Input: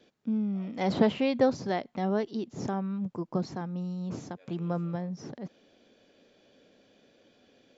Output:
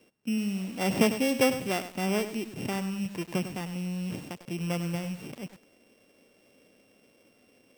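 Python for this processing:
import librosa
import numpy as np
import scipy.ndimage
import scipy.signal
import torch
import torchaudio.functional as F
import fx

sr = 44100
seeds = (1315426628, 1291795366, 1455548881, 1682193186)

y = np.r_[np.sort(x[:len(x) // 16 * 16].reshape(-1, 16), axis=1).ravel(), x[len(x) // 16 * 16:]]
y = fx.echo_crushed(y, sr, ms=100, feedback_pct=35, bits=7, wet_db=-10.5)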